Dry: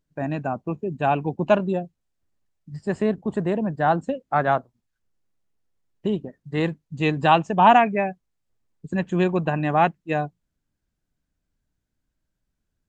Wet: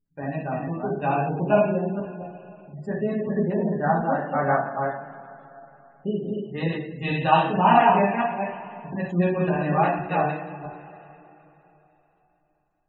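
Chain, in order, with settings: reverse delay 0.222 s, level -3 dB; 2.99–4.54 LPF 6200 Hz 12 dB/oct; dark delay 65 ms, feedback 52%, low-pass 1200 Hz, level -22.5 dB; two-slope reverb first 0.49 s, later 3.5 s, from -18 dB, DRR -5.5 dB; spectral gate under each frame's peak -30 dB strong; gain -9 dB

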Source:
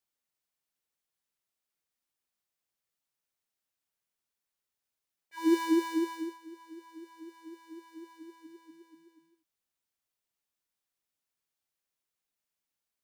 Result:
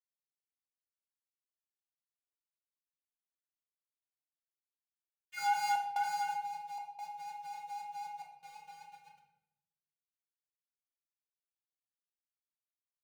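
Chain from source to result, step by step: HPF 170 Hz 12 dB/oct; comb 5.6 ms, depth 77%; compressor 4:1, threshold -28 dBFS, peak gain reduction 10.5 dB; sample leveller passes 2; frequency shift +490 Hz; step gate "xxxx.xxxx.xx" 73 bpm; flange 0.22 Hz, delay 9.7 ms, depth 2.5 ms, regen -71%; crossover distortion -55 dBFS; shoebox room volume 250 m³, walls mixed, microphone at 0.97 m

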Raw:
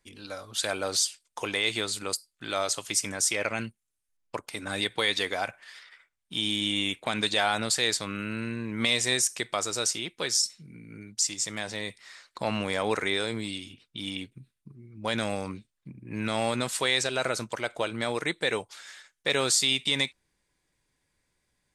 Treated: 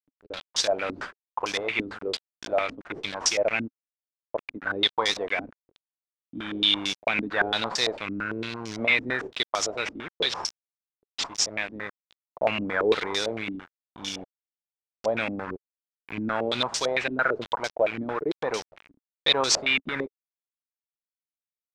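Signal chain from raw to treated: CVSD 64 kbps; low shelf 180 Hz -8.5 dB; on a send at -15.5 dB: reverb RT60 1.5 s, pre-delay 5 ms; on the sum: requantised 6-bit, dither none; stepped low-pass 8.9 Hz 270–5600 Hz

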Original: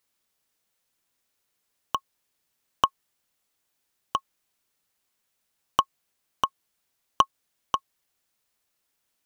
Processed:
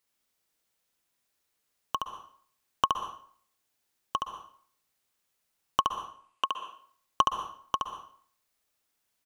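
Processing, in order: 5.81–6.44 speaker cabinet 320–9900 Hz, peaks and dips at 910 Hz -8 dB, 2700 Hz +10 dB, 4000 Hz -3 dB, 5700 Hz -7 dB; echo 70 ms -4 dB; reverb RT60 0.55 s, pre-delay 0.113 s, DRR 8.5 dB; gain -3.5 dB

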